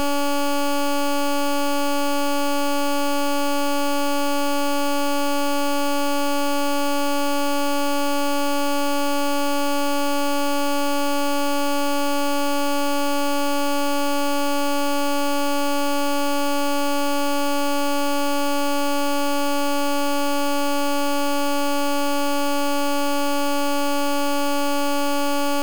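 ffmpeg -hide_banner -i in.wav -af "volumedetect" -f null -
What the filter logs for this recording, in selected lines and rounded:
mean_volume: -19.7 dB
max_volume: -19.7 dB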